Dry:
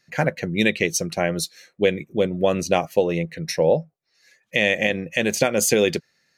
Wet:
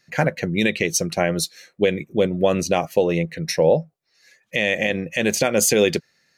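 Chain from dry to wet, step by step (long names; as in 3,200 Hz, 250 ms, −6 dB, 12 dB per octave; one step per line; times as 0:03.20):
brickwall limiter −8.5 dBFS, peak gain reduction 4.5 dB
level +2.5 dB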